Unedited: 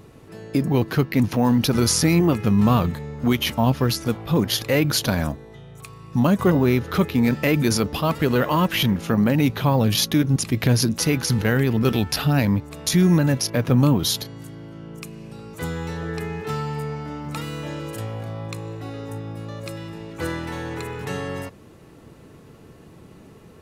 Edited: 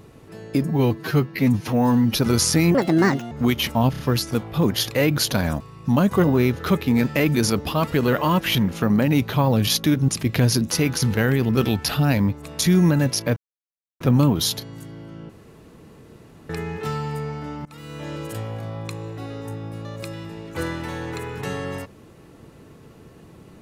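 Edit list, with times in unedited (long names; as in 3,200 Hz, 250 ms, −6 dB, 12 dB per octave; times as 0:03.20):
0:00.64–0:01.67: time-stretch 1.5×
0:02.23–0:03.14: play speed 160%
0:03.73: stutter 0.03 s, 4 plays
0:05.34–0:05.88: remove
0:13.64: splice in silence 0.64 s
0:14.93–0:16.13: fill with room tone
0:17.29–0:17.79: fade in, from −23.5 dB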